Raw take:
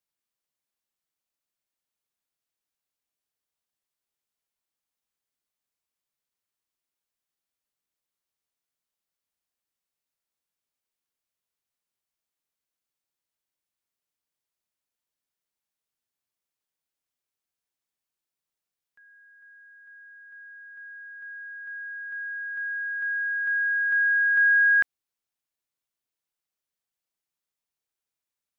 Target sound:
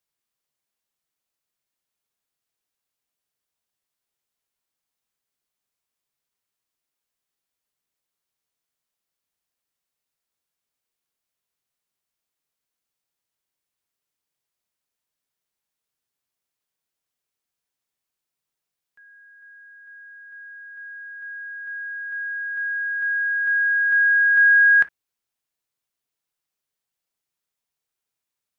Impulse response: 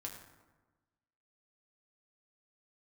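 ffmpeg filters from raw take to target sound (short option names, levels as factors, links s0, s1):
-filter_complex "[0:a]asplit=2[s0][s1];[1:a]atrim=start_sample=2205,atrim=end_sample=3969,asetrate=61740,aresample=44100[s2];[s1][s2]afir=irnorm=-1:irlink=0,volume=0.841[s3];[s0][s3]amix=inputs=2:normalize=0,volume=1.12"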